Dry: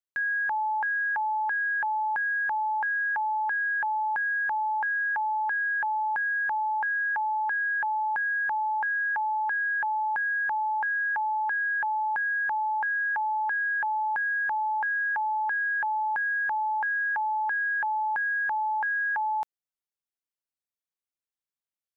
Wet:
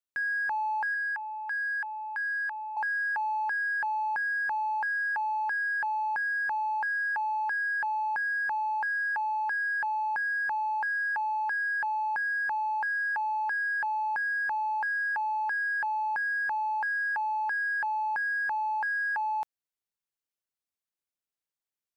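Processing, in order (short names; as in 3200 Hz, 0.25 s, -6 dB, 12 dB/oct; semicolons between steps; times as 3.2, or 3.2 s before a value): 0.94–2.77 HPF 1300 Hz 12 dB/oct; in parallel at -11.5 dB: soft clip -35 dBFS, distortion -11 dB; on the sum: gain -3 dB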